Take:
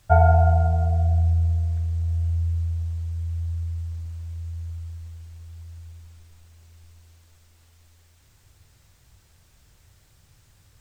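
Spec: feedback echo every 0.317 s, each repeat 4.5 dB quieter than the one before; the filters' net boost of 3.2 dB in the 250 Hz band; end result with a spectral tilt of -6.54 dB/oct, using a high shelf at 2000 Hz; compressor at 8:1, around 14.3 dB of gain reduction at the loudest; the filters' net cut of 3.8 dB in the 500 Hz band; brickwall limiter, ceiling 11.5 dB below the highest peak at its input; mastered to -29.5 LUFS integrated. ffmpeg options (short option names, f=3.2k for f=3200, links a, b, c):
-af "equalizer=f=250:t=o:g=9,equalizer=f=500:t=o:g=-9,highshelf=f=2k:g=4,acompressor=threshold=-27dB:ratio=8,alimiter=level_in=3dB:limit=-24dB:level=0:latency=1,volume=-3dB,aecho=1:1:317|634|951|1268|1585|1902|2219|2536|2853:0.596|0.357|0.214|0.129|0.0772|0.0463|0.0278|0.0167|0.01,volume=8dB"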